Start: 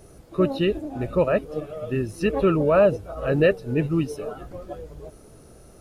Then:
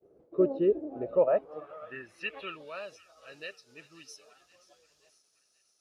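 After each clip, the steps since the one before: expander -42 dBFS; band-pass sweep 430 Hz -> 5.4 kHz, 0.91–2.92 s; feedback echo behind a high-pass 529 ms, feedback 50%, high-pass 1.4 kHz, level -18 dB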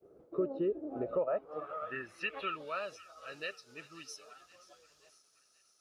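peaking EQ 1.3 kHz +7.5 dB 0.35 oct; compression 3:1, threshold -34 dBFS, peak gain reduction 12 dB; trim +1.5 dB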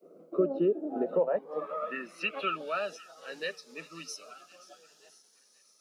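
rippled Chebyshev high-pass 160 Hz, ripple 3 dB; Shepard-style phaser rising 0.5 Hz; trim +9 dB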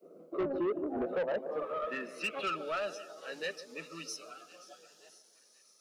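band-passed feedback delay 148 ms, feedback 67%, band-pass 420 Hz, level -13 dB; saturation -28 dBFS, distortion -9 dB

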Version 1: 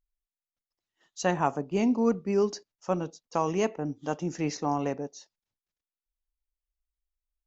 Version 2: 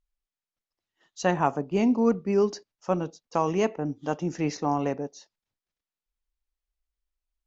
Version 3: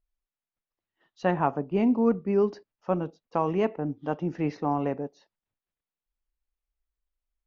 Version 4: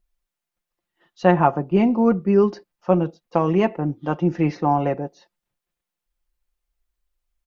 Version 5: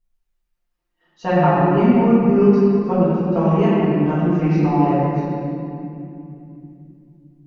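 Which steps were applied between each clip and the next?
distance through air 58 m; trim +2.5 dB
distance through air 300 m
comb 5.7 ms, depth 51%; trim +6.5 dB
reverberation RT60 2.7 s, pre-delay 4 ms, DRR -11 dB; trim -9 dB

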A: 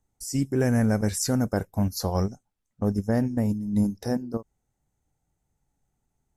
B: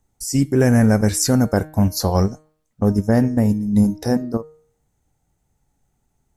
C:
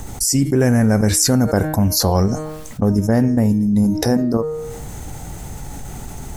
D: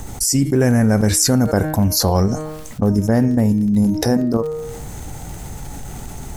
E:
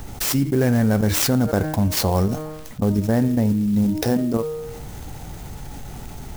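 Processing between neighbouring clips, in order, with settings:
de-hum 154.8 Hz, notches 29; trim +8 dB
level flattener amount 70%; trim -2 dB
crackle 41 per s -28 dBFS
sampling jitter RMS 0.029 ms; trim -3.5 dB

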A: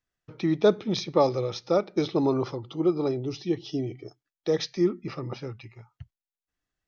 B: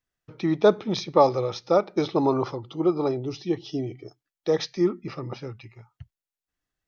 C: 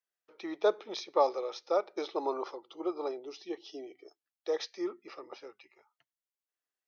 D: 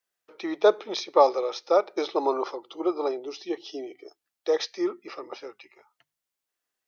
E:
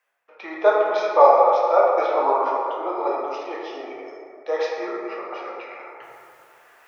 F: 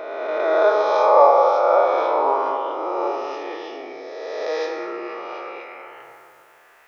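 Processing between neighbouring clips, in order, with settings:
dynamic bell 930 Hz, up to +7 dB, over -39 dBFS, Q 1
high-pass 380 Hz 24 dB/octave; trim -8 dB
hum notches 50/100/150 Hz; trim +8 dB
high-order bell 1.2 kHz +14 dB 2.7 oct; reverse; upward compressor, threshold -24 dBFS; reverse; plate-style reverb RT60 2.5 s, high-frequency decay 0.35×, DRR -4.5 dB; trim -11.5 dB
reverse spectral sustain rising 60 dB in 2.11 s; trim -3 dB

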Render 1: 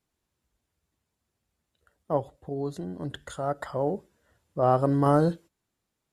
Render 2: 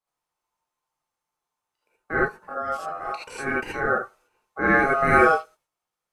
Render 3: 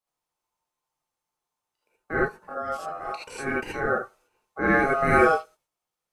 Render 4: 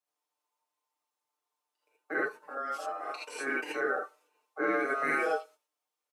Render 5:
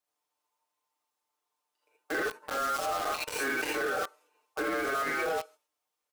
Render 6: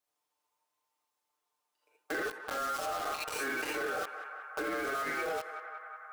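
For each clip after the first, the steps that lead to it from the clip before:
gate -59 dBFS, range -8 dB; ring modulator 960 Hz; gated-style reverb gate 100 ms rising, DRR -6 dB
peaking EQ 1.4 kHz -3.5 dB 1.5 oct
high-pass 290 Hz 24 dB/octave; comb 6.7 ms, depth 83%; compression, threshold -21 dBFS, peak gain reduction 6.5 dB; trim -4.5 dB
in parallel at -4.5 dB: companded quantiser 2-bit; on the sum: peak limiter -27.5 dBFS, peak gain reduction 11.5 dB; trim +2.5 dB
on a send: band-passed feedback delay 184 ms, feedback 85%, band-pass 1.2 kHz, level -13 dB; on the sum: compression 3:1, threshold -33 dBFS, peak gain reduction 4.5 dB

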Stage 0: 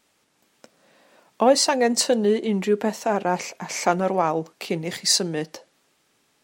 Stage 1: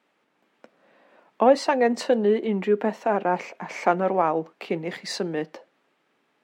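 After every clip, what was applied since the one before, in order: three-band isolator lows -22 dB, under 160 Hz, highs -19 dB, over 3 kHz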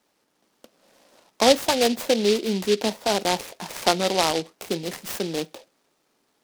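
delay time shaken by noise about 3.5 kHz, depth 0.12 ms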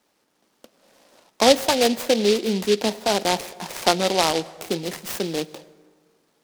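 plate-style reverb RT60 1.7 s, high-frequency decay 0.5×, pre-delay 90 ms, DRR 19.5 dB; trim +1.5 dB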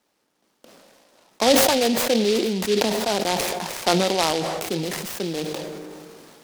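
decay stretcher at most 24 dB/s; trim -3 dB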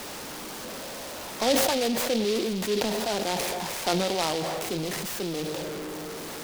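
jump at every zero crossing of -24.5 dBFS; trim -7.5 dB

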